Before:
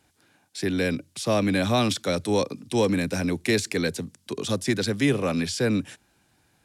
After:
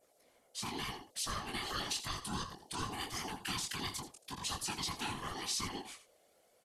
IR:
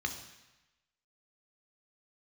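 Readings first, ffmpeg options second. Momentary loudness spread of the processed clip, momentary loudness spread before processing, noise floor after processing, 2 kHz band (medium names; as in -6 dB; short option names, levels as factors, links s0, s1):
7 LU, 8 LU, -70 dBFS, -13.0 dB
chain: -af "highpass=300,aeval=exprs='val(0)+0.000891*(sin(2*PI*60*n/s)+sin(2*PI*2*60*n/s)/2+sin(2*PI*3*60*n/s)/3+sin(2*PI*4*60*n/s)/4+sin(2*PI*5*60*n/s)/5)':c=same,acompressor=threshold=0.0501:ratio=6,aecho=1:1:82:0.237,aeval=exprs='val(0)*sin(2*PI*580*n/s)':c=same,flanger=delay=17.5:depth=7.9:speed=0.89,highshelf=f=6200:g=10.5,afftfilt=real='hypot(re,im)*cos(2*PI*random(0))':imag='hypot(re,im)*sin(2*PI*random(1))':win_size=512:overlap=0.75,aresample=32000,aresample=44100,adynamicequalizer=threshold=0.00141:dfrequency=3800:dqfactor=0.94:tfrequency=3800:tqfactor=0.94:attack=5:release=100:ratio=0.375:range=2:mode=boostabove:tftype=bell,bandreject=f=930:w=11,volume=1.12"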